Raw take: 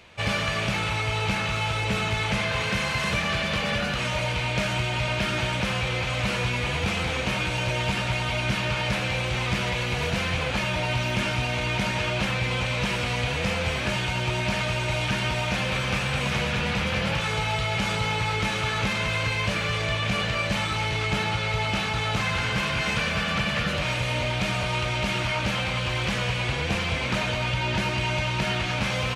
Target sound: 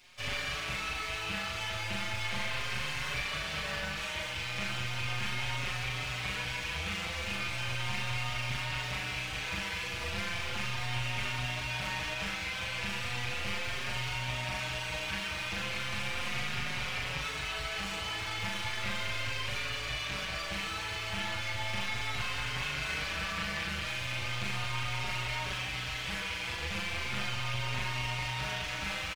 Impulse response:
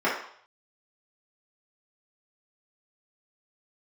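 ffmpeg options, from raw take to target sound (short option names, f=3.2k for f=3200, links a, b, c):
-filter_complex "[0:a]acrossover=split=110[a][b];[b]aeval=exprs='max(val(0),0)':c=same[c];[a][c]amix=inputs=2:normalize=0,acrossover=split=3100[d][e];[e]acompressor=threshold=-43dB:ratio=4:attack=1:release=60[f];[d][f]amix=inputs=2:normalize=0,tiltshelf=f=1.2k:g=-6,asplit=2[g][h];[h]adelay=40,volume=-2dB[i];[g][i]amix=inputs=2:normalize=0,asplit=2[j][k];[k]adelay=5.1,afreqshift=0.36[l];[j][l]amix=inputs=2:normalize=1,volume=-3.5dB"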